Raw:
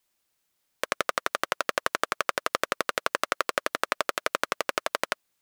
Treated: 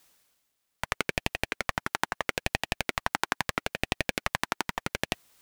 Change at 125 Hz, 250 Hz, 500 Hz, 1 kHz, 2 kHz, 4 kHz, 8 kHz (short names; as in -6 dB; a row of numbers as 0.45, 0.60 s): +13.5, +4.0, -5.5, -4.0, -1.5, -1.0, -2.5 dB